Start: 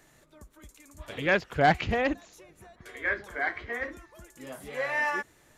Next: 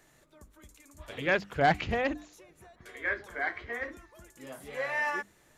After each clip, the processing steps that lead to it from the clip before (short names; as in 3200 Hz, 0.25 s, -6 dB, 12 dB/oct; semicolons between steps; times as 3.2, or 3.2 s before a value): notches 50/100/150/200/250/300 Hz; gain -2.5 dB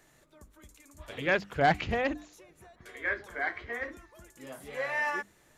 nothing audible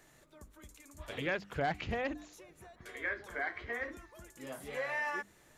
compressor 2.5:1, threshold -35 dBFS, peak gain reduction 10.5 dB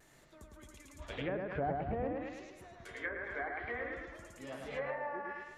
analogue delay 0.107 s, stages 4096, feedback 50%, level -3 dB; treble ducked by the level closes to 890 Hz, closed at -30.5 dBFS; vibrato 0.91 Hz 33 cents; gain -1 dB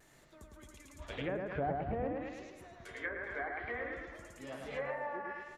echo 0.383 s -21 dB